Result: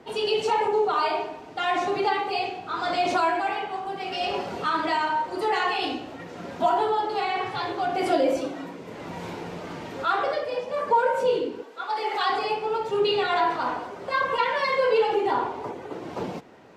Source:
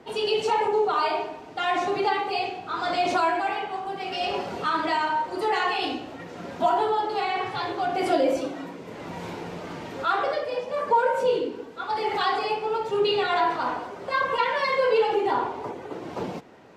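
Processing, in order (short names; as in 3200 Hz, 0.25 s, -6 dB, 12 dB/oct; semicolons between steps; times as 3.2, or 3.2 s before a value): 11.62–12.3 HPF 430 Hz 12 dB/oct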